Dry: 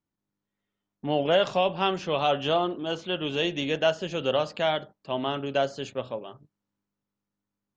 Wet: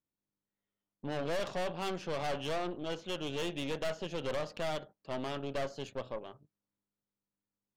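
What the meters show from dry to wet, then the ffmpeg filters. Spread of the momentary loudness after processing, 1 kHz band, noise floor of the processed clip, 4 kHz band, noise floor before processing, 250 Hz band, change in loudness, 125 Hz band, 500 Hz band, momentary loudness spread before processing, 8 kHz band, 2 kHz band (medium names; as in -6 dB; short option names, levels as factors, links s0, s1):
7 LU, -11.5 dB, under -85 dBFS, -11.5 dB, under -85 dBFS, -8.5 dB, -10.5 dB, -7.5 dB, -10.5 dB, 11 LU, no reading, -9.5 dB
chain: -af "equalizer=f=510:t=o:w=0.77:g=3,aeval=exprs='(tanh(25.1*val(0)+0.75)-tanh(0.75))/25.1':c=same,volume=0.631"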